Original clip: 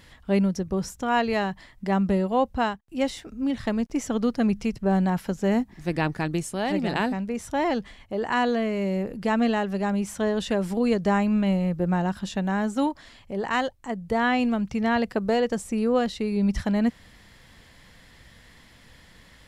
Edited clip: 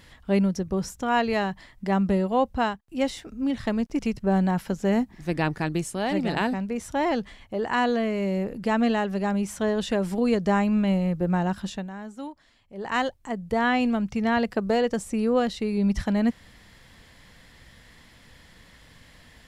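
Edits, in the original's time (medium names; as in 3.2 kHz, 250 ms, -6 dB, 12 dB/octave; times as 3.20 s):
3.99–4.58 s: delete
12.24–13.56 s: dip -12.5 dB, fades 0.25 s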